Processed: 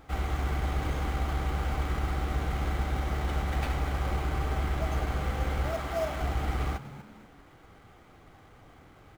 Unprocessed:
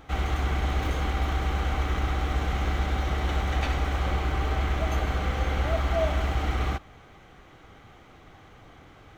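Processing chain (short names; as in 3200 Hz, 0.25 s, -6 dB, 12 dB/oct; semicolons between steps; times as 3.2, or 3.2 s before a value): frequency-shifting echo 0.242 s, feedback 36%, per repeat +74 Hz, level -15 dB; in parallel at -5.5 dB: sample-rate reducer 6000 Hz, jitter 20%; 5.71–6.21 on the sum: low shelf 150 Hz -10 dB; gain -7 dB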